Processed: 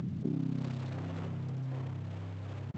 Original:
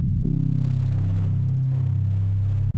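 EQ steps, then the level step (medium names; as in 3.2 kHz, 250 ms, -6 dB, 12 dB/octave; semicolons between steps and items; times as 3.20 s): high-pass 310 Hz 12 dB/octave; distance through air 55 m; 0.0 dB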